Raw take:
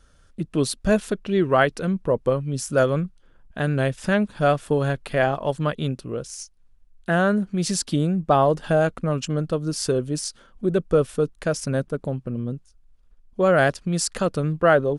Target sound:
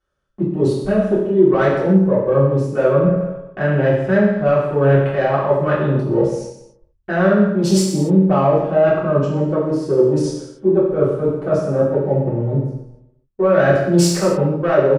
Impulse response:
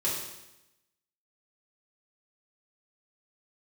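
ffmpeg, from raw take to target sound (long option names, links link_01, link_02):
-filter_complex "[0:a]afwtdn=0.0282,asplit=2[link_01][link_02];[link_02]aeval=exprs='sgn(val(0))*max(abs(val(0))-0.0126,0)':channel_layout=same,volume=-12dB[link_03];[link_01][link_03]amix=inputs=2:normalize=0,acontrast=61,asplit=2[link_04][link_05];[link_05]highpass=frequency=720:poles=1,volume=12dB,asoftclip=type=tanh:threshold=-1dB[link_06];[link_04][link_06]amix=inputs=2:normalize=0,lowpass=frequency=1200:poles=1,volume=-6dB,asplit=2[link_07][link_08];[link_08]adelay=143,lowpass=frequency=3000:poles=1,volume=-23dB,asplit=2[link_09][link_10];[link_10]adelay=143,lowpass=frequency=3000:poles=1,volume=0.52,asplit=2[link_11][link_12];[link_12]adelay=143,lowpass=frequency=3000:poles=1,volume=0.52[link_13];[link_07][link_09][link_11][link_13]amix=inputs=4:normalize=0,areverse,acompressor=threshold=-26dB:ratio=6,areverse,agate=range=-15dB:threshold=-49dB:ratio=16:detection=peak[link_14];[1:a]atrim=start_sample=2205,afade=type=out:start_time=0.35:duration=0.01,atrim=end_sample=15876[link_15];[link_14][link_15]afir=irnorm=-1:irlink=0,volume=4dB"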